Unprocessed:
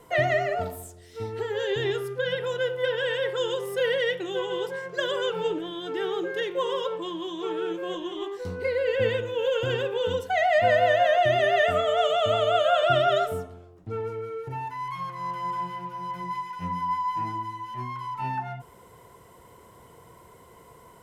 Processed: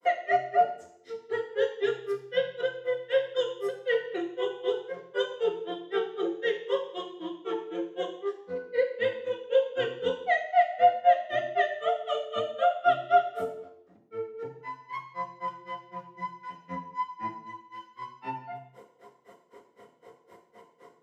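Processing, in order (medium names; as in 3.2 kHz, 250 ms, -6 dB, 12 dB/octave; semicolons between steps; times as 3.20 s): high-pass 290 Hz 12 dB/octave; peak limiter -19.5 dBFS, peak gain reduction 8 dB; granulator 136 ms, grains 3.9 per s, pitch spread up and down by 0 st; reverberation RT60 0.70 s, pre-delay 3 ms, DRR -0.5 dB; trim -6 dB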